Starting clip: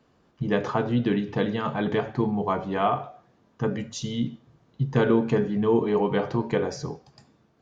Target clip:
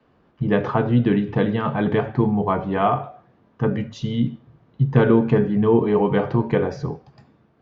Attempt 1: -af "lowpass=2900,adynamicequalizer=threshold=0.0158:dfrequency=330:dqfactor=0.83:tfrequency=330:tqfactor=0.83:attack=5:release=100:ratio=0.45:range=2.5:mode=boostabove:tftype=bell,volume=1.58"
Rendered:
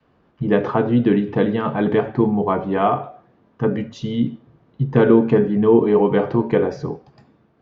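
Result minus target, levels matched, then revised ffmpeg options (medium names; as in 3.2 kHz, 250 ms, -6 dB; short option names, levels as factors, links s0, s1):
125 Hz band -4.5 dB
-af "lowpass=2900,adynamicequalizer=threshold=0.0158:dfrequency=100:dqfactor=0.83:tfrequency=100:tqfactor=0.83:attack=5:release=100:ratio=0.45:range=2.5:mode=boostabove:tftype=bell,volume=1.58"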